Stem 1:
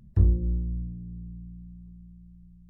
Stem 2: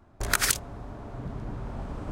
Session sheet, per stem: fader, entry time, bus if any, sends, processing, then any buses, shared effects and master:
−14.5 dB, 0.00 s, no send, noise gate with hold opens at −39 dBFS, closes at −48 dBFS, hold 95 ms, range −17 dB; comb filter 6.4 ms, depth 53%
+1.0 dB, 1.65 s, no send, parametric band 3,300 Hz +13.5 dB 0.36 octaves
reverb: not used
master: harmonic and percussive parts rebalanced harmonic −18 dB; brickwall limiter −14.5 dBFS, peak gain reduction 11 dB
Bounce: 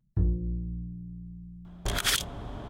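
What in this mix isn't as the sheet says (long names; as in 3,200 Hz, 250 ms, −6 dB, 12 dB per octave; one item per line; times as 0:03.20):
stem 1 −14.5 dB → −3.5 dB
master: missing harmonic and percussive parts rebalanced harmonic −18 dB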